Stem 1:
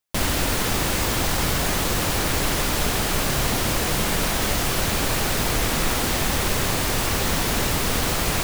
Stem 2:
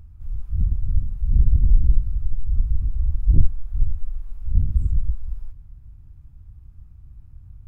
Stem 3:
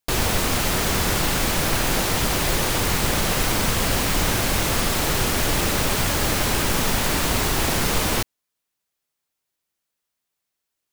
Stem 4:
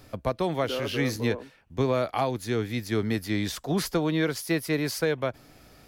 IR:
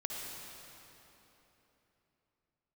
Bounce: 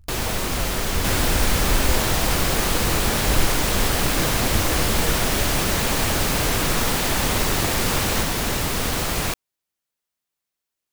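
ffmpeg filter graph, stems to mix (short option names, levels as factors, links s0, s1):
-filter_complex "[0:a]adelay=900,volume=0.891[s0];[1:a]volume=0.398[s1];[2:a]volume=0.668[s2];[3:a]aeval=exprs='val(0)*gte(abs(val(0)),0.0075)':c=same,volume=0.335[s3];[s0][s1][s2][s3]amix=inputs=4:normalize=0"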